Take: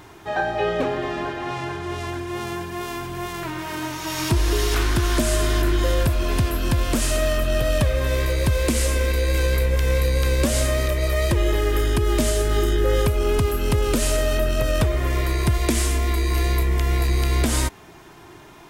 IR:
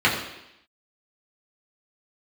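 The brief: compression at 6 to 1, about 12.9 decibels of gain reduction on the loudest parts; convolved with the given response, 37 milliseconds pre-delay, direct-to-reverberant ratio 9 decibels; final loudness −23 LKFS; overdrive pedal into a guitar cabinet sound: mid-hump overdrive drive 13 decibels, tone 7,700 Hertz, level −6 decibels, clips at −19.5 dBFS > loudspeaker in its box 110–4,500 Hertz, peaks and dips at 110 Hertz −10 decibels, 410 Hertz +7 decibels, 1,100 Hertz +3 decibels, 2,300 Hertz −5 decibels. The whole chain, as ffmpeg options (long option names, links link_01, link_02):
-filter_complex "[0:a]acompressor=threshold=-30dB:ratio=6,asplit=2[link_01][link_02];[1:a]atrim=start_sample=2205,adelay=37[link_03];[link_02][link_03]afir=irnorm=-1:irlink=0,volume=-28.5dB[link_04];[link_01][link_04]amix=inputs=2:normalize=0,asplit=2[link_05][link_06];[link_06]highpass=frequency=720:poles=1,volume=13dB,asoftclip=type=tanh:threshold=-19.5dB[link_07];[link_05][link_07]amix=inputs=2:normalize=0,lowpass=frequency=7700:poles=1,volume=-6dB,highpass=110,equalizer=frequency=110:width_type=q:width=4:gain=-10,equalizer=frequency=410:width_type=q:width=4:gain=7,equalizer=frequency=1100:width_type=q:width=4:gain=3,equalizer=frequency=2300:width_type=q:width=4:gain=-5,lowpass=frequency=4500:width=0.5412,lowpass=frequency=4500:width=1.3066,volume=8dB"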